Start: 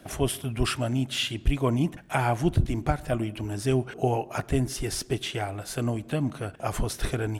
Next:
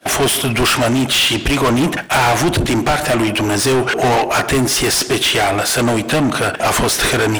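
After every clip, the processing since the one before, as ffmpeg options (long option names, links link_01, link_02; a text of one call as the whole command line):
ffmpeg -i in.wav -filter_complex "[0:a]agate=range=-33dB:threshold=-41dB:ratio=3:detection=peak,acontrast=75,asplit=2[link_01][link_02];[link_02]highpass=frequency=720:poles=1,volume=31dB,asoftclip=type=tanh:threshold=-5.5dB[link_03];[link_01][link_03]amix=inputs=2:normalize=0,lowpass=frequency=7800:poles=1,volume=-6dB,volume=-1.5dB" out.wav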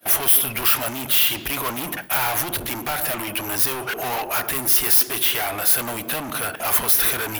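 ffmpeg -i in.wav -filter_complex "[0:a]acrossover=split=770[link_01][link_02];[link_01]asoftclip=type=tanh:threshold=-23dB[link_03];[link_02]aexciter=amount=11.2:drive=5.2:freq=11000[link_04];[link_03][link_04]amix=inputs=2:normalize=0,volume=-8.5dB" out.wav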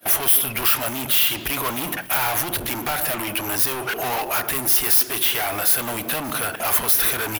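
ffmpeg -i in.wav -filter_complex "[0:a]asplit=2[link_01][link_02];[link_02]acompressor=threshold=-28dB:ratio=6,volume=-2dB[link_03];[link_01][link_03]amix=inputs=2:normalize=0,aecho=1:1:589|1178|1767|2356:0.0794|0.0437|0.024|0.0132,volume=-2dB" out.wav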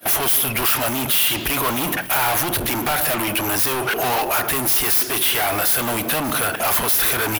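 ffmpeg -i in.wav -af "asoftclip=type=tanh:threshold=-21dB,volume=6.5dB" out.wav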